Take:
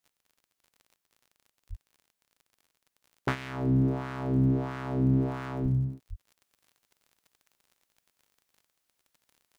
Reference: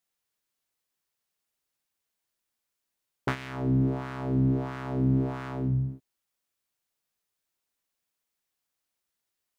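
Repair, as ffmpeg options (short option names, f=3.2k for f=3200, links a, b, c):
-filter_complex "[0:a]adeclick=t=4,asplit=3[a][b][c];[a]afade=t=out:st=1.69:d=0.02[d];[b]highpass=f=140:w=0.5412,highpass=f=140:w=1.3066,afade=t=in:st=1.69:d=0.02,afade=t=out:st=1.81:d=0.02[e];[c]afade=t=in:st=1.81:d=0.02[f];[d][e][f]amix=inputs=3:normalize=0,asplit=3[g][h][i];[g]afade=t=out:st=5.62:d=0.02[j];[h]highpass=f=140:w=0.5412,highpass=f=140:w=1.3066,afade=t=in:st=5.62:d=0.02,afade=t=out:st=5.74:d=0.02[k];[i]afade=t=in:st=5.74:d=0.02[l];[j][k][l]amix=inputs=3:normalize=0,asplit=3[m][n][o];[m]afade=t=out:st=6.09:d=0.02[p];[n]highpass=f=140:w=0.5412,highpass=f=140:w=1.3066,afade=t=in:st=6.09:d=0.02,afade=t=out:st=6.21:d=0.02[q];[o]afade=t=in:st=6.21:d=0.02[r];[p][q][r]amix=inputs=3:normalize=0,asetnsamples=n=441:p=0,asendcmd='6.41 volume volume -4.5dB',volume=0dB"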